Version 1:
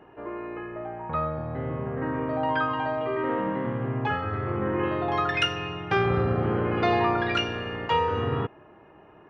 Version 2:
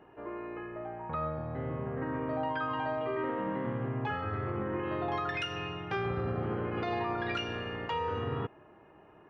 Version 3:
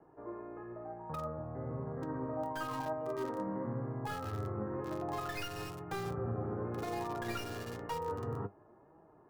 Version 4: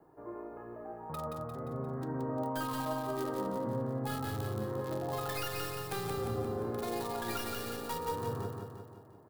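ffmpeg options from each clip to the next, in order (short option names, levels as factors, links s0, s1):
-af "alimiter=limit=0.106:level=0:latency=1:release=115,volume=0.562"
-filter_complex "[0:a]acrossover=split=220|780|1500[s0][s1][s2][s3];[s3]acrusher=bits=4:dc=4:mix=0:aa=0.000001[s4];[s0][s1][s2][s4]amix=inputs=4:normalize=0,flanger=delay=6:depth=4:regen=61:speed=1:shape=sinusoidal"
-af "aexciter=amount=2.3:drive=2.2:freq=3400,aeval=exprs='(mod(18.8*val(0)+1,2)-1)/18.8':c=same,aecho=1:1:175|350|525|700|875|1050|1225:0.631|0.334|0.177|0.0939|0.0498|0.0264|0.014"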